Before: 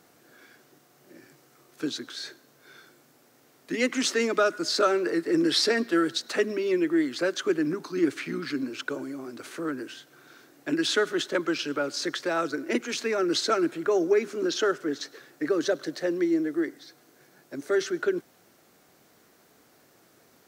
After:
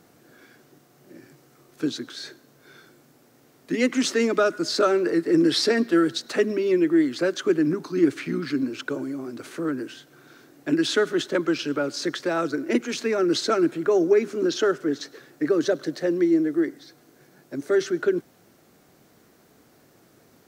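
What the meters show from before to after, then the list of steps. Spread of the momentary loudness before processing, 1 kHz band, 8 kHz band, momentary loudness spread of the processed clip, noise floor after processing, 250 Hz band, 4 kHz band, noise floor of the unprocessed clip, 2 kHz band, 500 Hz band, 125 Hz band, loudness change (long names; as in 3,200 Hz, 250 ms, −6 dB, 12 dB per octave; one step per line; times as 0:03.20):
12 LU, +1.0 dB, 0.0 dB, 11 LU, −58 dBFS, +5.0 dB, 0.0 dB, −60 dBFS, +0.5 dB, +3.5 dB, +7.0 dB, +3.5 dB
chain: low-shelf EQ 370 Hz +8.5 dB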